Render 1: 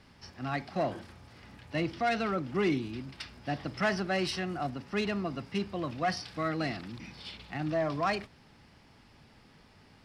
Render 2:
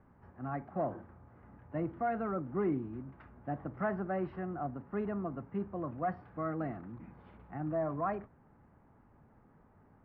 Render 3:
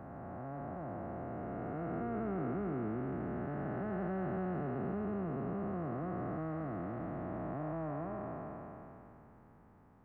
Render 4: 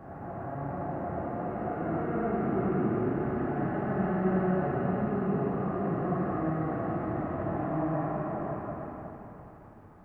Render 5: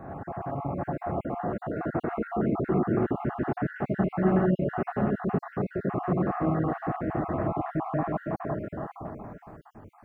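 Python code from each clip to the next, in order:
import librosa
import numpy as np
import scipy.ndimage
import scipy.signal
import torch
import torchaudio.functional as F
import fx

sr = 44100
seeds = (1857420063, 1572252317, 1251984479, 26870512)

y1 = scipy.signal.sosfilt(scipy.signal.butter(4, 1400.0, 'lowpass', fs=sr, output='sos'), x)
y1 = F.gain(torch.from_numpy(y1), -3.5).numpy()
y2 = fx.spec_blur(y1, sr, span_ms=1180.0)
y2 = F.gain(torch.from_numpy(y2), 4.5).numpy()
y3 = fx.rev_plate(y2, sr, seeds[0], rt60_s=2.6, hf_ratio=0.8, predelay_ms=0, drr_db=-8.0)
y4 = fx.spec_dropout(y3, sr, seeds[1], share_pct=41)
y4 = F.gain(torch.from_numpy(y4), 4.5).numpy()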